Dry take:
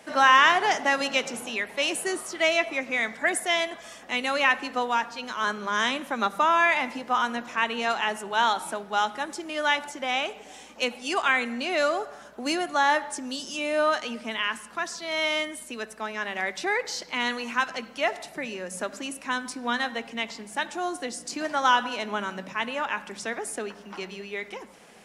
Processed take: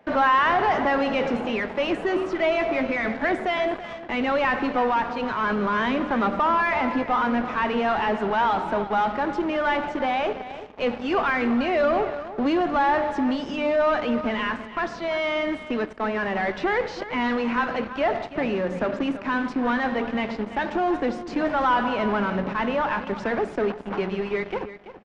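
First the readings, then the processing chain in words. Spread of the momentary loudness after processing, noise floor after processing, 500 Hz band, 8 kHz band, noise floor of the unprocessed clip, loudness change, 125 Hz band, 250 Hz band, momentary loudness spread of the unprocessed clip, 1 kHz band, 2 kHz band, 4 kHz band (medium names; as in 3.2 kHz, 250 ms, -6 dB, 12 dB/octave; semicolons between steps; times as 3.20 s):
6 LU, -38 dBFS, +6.0 dB, under -15 dB, -47 dBFS, +2.0 dB, no reading, +9.5 dB, 11 LU, +2.5 dB, -1.5 dB, -6.0 dB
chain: de-hum 75.38 Hz, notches 9; in parallel at -7 dB: fuzz box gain 41 dB, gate -42 dBFS; on the sum: tape spacing loss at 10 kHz 45 dB; delay 333 ms -13.5 dB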